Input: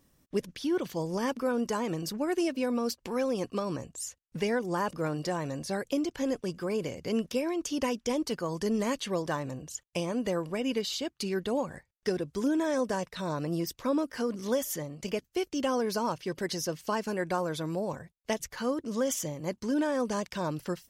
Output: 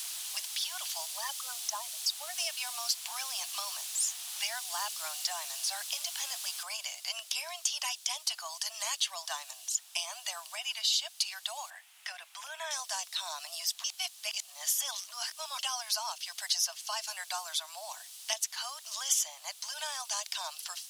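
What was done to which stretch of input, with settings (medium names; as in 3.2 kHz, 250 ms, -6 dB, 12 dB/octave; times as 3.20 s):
1.05–2.35 s: resonances exaggerated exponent 2
6.63 s: noise floor step -48 dB -60 dB
10.55–11.07 s: three bands expanded up and down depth 40%
11.70–12.71 s: resonant high shelf 3.2 kHz -12 dB, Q 1.5
13.84–15.59 s: reverse
whole clip: steep high-pass 660 Hz 96 dB/octave; high-order bell 5.8 kHz +13.5 dB 2.4 oct; three bands compressed up and down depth 40%; trim -4.5 dB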